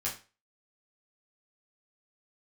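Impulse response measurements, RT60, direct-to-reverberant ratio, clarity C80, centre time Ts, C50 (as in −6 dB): 0.35 s, −6.0 dB, 14.5 dB, 24 ms, 9.0 dB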